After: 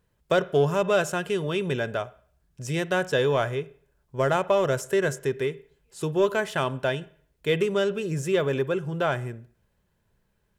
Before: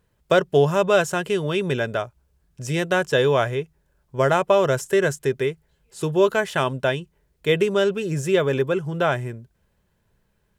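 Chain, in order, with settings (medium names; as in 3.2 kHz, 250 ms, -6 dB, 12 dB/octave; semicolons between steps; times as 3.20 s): reverberation RT60 0.50 s, pre-delay 38 ms, DRR 18.5 dB; in parallel at -9 dB: saturation -17.5 dBFS, distortion -11 dB; on the sum: trim -6 dB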